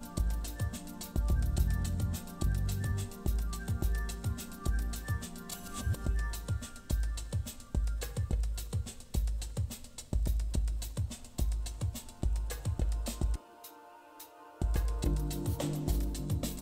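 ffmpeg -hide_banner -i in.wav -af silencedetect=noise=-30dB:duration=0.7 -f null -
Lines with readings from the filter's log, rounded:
silence_start: 13.35
silence_end: 14.62 | silence_duration: 1.26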